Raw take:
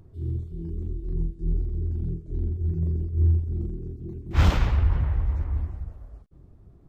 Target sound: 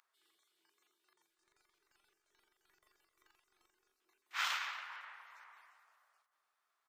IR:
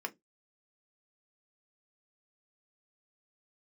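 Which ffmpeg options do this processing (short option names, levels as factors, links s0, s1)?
-filter_complex "[0:a]highpass=f=1200:w=0.5412,highpass=f=1200:w=1.3066,asettb=1/sr,asplit=3[s0][s1][s2];[s0]atrim=end=1.304[s3];[s1]atrim=start=1.3:end=3.91,asetpts=PTS-STARTPTS,afade=t=in:d=0.004:c=qsin,afade=t=out:st=2.606:d=0.004:c=qsin,aeval=exprs='0.002*(cos(1*acos(clip(val(0)/0.002,-1,1)))-cos(1*PI/2))+0.000316*(cos(4*acos(clip(val(0)/0.002,-1,1)))-cos(4*PI/2))+0.000355*(cos(6*acos(clip(val(0)/0.002,-1,1)))-cos(6*PI/2))':c=same[s4];[s2]atrim=start=3.906[s5];[s3][s4]acrossfade=d=0.004:c1=hsin:c2=qsin[s6];[s6][s5]acrossfade=d=0.004:c1=qsin:c2=hsin,asplit=2[s7][s8];[s8]adelay=284,lowpass=f=1900:p=1,volume=0.251,asplit=2[s9][s10];[s10]adelay=284,lowpass=f=1900:p=1,volume=0.31,asplit=2[s11][s12];[s12]adelay=284,lowpass=f=1900:p=1,volume=0.31[s13];[s7][s9][s11][s13]amix=inputs=4:normalize=0,volume=0.75"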